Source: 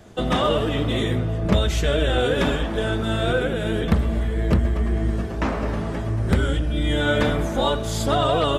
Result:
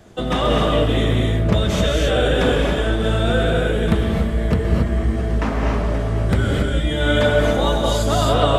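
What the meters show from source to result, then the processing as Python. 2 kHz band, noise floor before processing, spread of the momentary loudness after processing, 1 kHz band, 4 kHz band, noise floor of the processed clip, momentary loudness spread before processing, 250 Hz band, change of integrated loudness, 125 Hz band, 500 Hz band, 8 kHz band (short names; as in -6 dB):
+3.0 dB, -27 dBFS, 4 LU, +3.0 dB, +3.0 dB, -22 dBFS, 5 LU, +3.0 dB, +3.5 dB, +3.5 dB, +4.0 dB, +3.5 dB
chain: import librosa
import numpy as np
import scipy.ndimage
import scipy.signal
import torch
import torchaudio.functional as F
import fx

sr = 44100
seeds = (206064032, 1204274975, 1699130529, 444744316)

y = fx.rev_gated(x, sr, seeds[0], gate_ms=300, shape='rising', drr_db=-0.5)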